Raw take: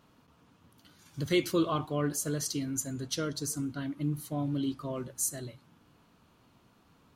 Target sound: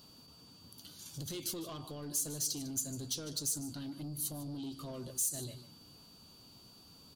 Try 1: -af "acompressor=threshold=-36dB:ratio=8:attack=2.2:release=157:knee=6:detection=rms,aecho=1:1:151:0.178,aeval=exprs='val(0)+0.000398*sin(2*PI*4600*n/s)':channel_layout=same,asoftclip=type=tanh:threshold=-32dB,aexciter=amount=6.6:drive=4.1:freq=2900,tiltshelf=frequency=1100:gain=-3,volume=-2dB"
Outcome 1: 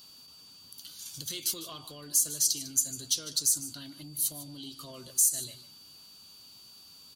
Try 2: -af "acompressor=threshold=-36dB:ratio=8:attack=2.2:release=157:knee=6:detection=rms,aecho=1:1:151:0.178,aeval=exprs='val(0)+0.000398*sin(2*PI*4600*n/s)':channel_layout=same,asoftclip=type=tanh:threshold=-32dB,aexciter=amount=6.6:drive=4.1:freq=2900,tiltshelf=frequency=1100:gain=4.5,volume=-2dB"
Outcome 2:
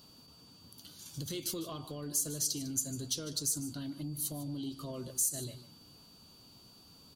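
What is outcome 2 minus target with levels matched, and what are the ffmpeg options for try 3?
soft clipping: distortion −10 dB
-af "acompressor=threshold=-36dB:ratio=8:attack=2.2:release=157:knee=6:detection=rms,aecho=1:1:151:0.178,aeval=exprs='val(0)+0.000398*sin(2*PI*4600*n/s)':channel_layout=same,asoftclip=type=tanh:threshold=-39.5dB,aexciter=amount=6.6:drive=4.1:freq=2900,tiltshelf=frequency=1100:gain=4.5,volume=-2dB"

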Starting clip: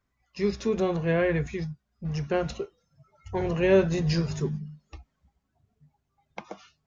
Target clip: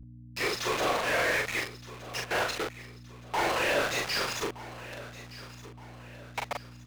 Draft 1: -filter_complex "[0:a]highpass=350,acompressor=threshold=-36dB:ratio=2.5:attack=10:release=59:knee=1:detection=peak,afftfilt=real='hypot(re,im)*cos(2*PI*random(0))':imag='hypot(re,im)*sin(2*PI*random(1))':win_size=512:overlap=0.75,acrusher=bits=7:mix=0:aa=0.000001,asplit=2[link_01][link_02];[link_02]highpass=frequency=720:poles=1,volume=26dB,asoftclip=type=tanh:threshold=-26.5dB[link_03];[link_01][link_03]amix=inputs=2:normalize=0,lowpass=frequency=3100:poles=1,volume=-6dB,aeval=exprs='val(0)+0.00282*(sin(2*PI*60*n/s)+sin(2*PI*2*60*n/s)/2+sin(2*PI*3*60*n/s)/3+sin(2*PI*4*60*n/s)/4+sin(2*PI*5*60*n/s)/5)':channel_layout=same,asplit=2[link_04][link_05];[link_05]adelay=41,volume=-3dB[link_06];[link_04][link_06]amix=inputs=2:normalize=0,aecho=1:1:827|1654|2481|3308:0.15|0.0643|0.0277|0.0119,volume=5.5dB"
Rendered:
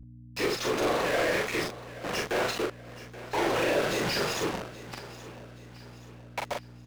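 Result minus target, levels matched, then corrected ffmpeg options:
echo 392 ms early; 250 Hz band +5.5 dB
-filter_complex "[0:a]highpass=810,acompressor=threshold=-36dB:ratio=2.5:attack=10:release=59:knee=1:detection=peak,afftfilt=real='hypot(re,im)*cos(2*PI*random(0))':imag='hypot(re,im)*sin(2*PI*random(1))':win_size=512:overlap=0.75,acrusher=bits=7:mix=0:aa=0.000001,asplit=2[link_01][link_02];[link_02]highpass=frequency=720:poles=1,volume=26dB,asoftclip=type=tanh:threshold=-26.5dB[link_03];[link_01][link_03]amix=inputs=2:normalize=0,lowpass=frequency=3100:poles=1,volume=-6dB,aeval=exprs='val(0)+0.00282*(sin(2*PI*60*n/s)+sin(2*PI*2*60*n/s)/2+sin(2*PI*3*60*n/s)/3+sin(2*PI*4*60*n/s)/4+sin(2*PI*5*60*n/s)/5)':channel_layout=same,asplit=2[link_04][link_05];[link_05]adelay=41,volume=-3dB[link_06];[link_04][link_06]amix=inputs=2:normalize=0,aecho=1:1:1219|2438|3657|4876:0.15|0.0643|0.0277|0.0119,volume=5.5dB"

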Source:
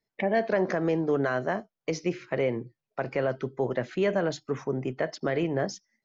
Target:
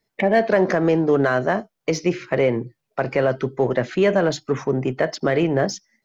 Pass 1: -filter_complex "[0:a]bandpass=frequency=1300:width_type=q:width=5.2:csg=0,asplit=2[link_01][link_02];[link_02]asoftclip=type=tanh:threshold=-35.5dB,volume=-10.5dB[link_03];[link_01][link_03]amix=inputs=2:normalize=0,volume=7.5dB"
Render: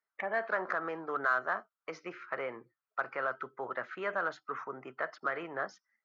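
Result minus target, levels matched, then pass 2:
1,000 Hz band +6.5 dB
-filter_complex "[0:a]asplit=2[link_01][link_02];[link_02]asoftclip=type=tanh:threshold=-35.5dB,volume=-10.5dB[link_03];[link_01][link_03]amix=inputs=2:normalize=0,volume=7.5dB"

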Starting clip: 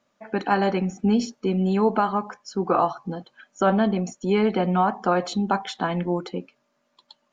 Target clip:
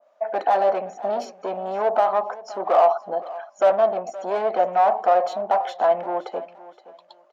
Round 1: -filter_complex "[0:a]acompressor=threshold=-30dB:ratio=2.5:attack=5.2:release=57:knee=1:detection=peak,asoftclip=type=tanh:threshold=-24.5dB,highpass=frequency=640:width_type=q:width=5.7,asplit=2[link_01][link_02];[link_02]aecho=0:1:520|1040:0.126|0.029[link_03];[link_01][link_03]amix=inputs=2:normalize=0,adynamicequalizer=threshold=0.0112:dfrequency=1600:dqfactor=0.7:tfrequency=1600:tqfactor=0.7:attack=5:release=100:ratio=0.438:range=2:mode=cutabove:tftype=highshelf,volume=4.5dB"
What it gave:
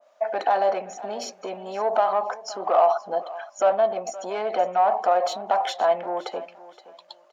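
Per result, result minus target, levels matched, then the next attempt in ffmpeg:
downward compressor: peak gain reduction +10 dB; 4,000 Hz band +7.5 dB
-filter_complex "[0:a]asoftclip=type=tanh:threshold=-24.5dB,highpass=frequency=640:width_type=q:width=5.7,asplit=2[link_01][link_02];[link_02]aecho=0:1:520|1040:0.126|0.029[link_03];[link_01][link_03]amix=inputs=2:normalize=0,adynamicequalizer=threshold=0.0112:dfrequency=1600:dqfactor=0.7:tfrequency=1600:tqfactor=0.7:attack=5:release=100:ratio=0.438:range=2:mode=cutabove:tftype=highshelf,volume=4.5dB"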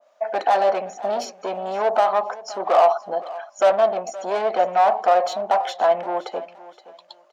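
4,000 Hz band +6.0 dB
-filter_complex "[0:a]asoftclip=type=tanh:threshold=-24.5dB,highpass=frequency=640:width_type=q:width=5.7,highshelf=frequency=2300:gain=-10.5,asplit=2[link_01][link_02];[link_02]aecho=0:1:520|1040:0.126|0.029[link_03];[link_01][link_03]amix=inputs=2:normalize=0,adynamicequalizer=threshold=0.0112:dfrequency=1600:dqfactor=0.7:tfrequency=1600:tqfactor=0.7:attack=5:release=100:ratio=0.438:range=2:mode=cutabove:tftype=highshelf,volume=4.5dB"

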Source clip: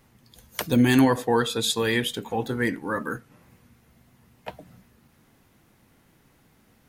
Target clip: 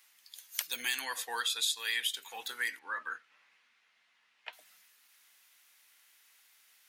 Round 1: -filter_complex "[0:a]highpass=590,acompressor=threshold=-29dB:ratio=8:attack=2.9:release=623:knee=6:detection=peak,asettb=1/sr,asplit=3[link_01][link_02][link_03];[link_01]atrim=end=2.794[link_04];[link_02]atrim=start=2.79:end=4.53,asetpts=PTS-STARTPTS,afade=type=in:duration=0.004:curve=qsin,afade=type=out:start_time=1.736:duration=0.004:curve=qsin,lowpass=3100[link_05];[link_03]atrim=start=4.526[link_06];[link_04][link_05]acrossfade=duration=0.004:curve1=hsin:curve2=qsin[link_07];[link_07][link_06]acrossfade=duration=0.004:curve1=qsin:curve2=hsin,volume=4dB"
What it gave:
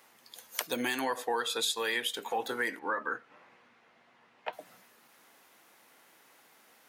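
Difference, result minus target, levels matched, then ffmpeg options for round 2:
500 Hz band +15.5 dB
-filter_complex "[0:a]highpass=2300,acompressor=threshold=-29dB:ratio=8:attack=2.9:release=623:knee=6:detection=peak,asettb=1/sr,asplit=3[link_01][link_02][link_03];[link_01]atrim=end=2.794[link_04];[link_02]atrim=start=2.79:end=4.53,asetpts=PTS-STARTPTS,afade=type=in:duration=0.004:curve=qsin,afade=type=out:start_time=1.736:duration=0.004:curve=qsin,lowpass=3100[link_05];[link_03]atrim=start=4.526[link_06];[link_04][link_05]acrossfade=duration=0.004:curve1=hsin:curve2=qsin[link_07];[link_07][link_06]acrossfade=duration=0.004:curve1=qsin:curve2=hsin,volume=4dB"

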